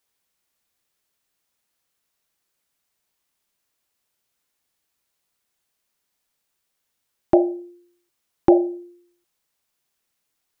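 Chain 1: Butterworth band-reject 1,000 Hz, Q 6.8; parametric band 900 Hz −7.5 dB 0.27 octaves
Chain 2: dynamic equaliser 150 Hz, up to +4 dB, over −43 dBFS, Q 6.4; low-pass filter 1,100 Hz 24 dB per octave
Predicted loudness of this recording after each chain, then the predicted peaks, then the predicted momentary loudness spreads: −21.0, −20.5 LKFS; −3.0, −3.0 dBFS; 17, 17 LU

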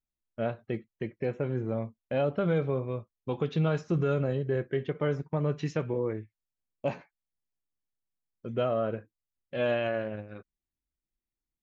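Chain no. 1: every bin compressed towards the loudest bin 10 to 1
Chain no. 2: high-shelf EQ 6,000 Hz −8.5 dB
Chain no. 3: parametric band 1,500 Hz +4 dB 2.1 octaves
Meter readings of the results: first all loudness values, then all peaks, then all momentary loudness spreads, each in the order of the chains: −36.0, −31.5, −30.5 LKFS; −17.0, −17.0, −14.5 dBFS; 8, 12, 12 LU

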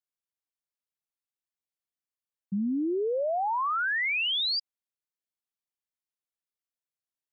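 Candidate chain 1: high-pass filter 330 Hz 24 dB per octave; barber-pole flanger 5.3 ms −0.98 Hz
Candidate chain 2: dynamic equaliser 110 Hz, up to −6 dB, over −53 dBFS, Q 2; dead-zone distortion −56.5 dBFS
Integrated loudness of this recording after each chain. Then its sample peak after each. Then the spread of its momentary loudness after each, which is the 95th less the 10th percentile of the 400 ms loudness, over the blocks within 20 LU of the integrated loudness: −30.5, −28.0 LKFS; −25.0, −25.0 dBFS; 8, 6 LU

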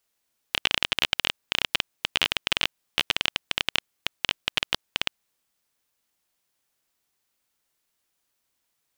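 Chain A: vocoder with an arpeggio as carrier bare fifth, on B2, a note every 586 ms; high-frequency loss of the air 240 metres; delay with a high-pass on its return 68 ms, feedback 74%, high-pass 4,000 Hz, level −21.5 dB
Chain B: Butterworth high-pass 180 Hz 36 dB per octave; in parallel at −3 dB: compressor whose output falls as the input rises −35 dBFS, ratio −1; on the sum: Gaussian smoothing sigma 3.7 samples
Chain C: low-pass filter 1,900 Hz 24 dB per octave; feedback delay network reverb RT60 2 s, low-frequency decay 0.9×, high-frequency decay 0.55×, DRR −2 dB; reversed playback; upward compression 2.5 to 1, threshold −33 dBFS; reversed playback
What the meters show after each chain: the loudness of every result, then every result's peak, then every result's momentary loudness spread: −31.5, −33.5, −32.0 LKFS; −11.0, −10.0, −10.0 dBFS; 7, 5, 15 LU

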